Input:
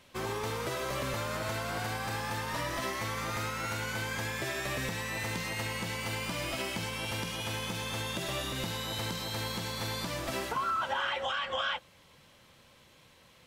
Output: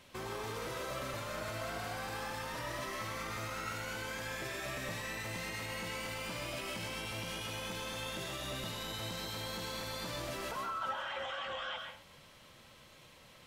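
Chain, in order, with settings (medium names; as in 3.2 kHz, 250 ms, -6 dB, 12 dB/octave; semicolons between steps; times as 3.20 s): peak limiter -33.5 dBFS, peak gain reduction 11 dB; on a send: reverberation RT60 0.40 s, pre-delay 85 ms, DRR 3 dB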